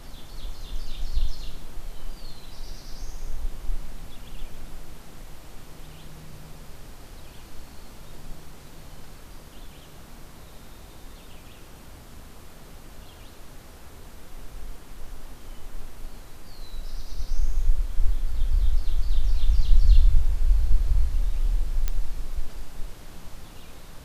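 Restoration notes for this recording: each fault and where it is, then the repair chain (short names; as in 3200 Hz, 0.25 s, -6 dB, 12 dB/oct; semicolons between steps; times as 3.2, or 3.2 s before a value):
21.88 pop -12 dBFS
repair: de-click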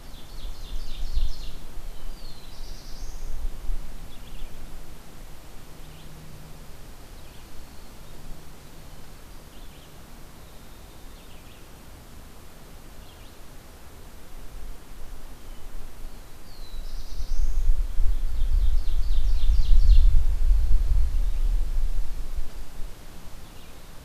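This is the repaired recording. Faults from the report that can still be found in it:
none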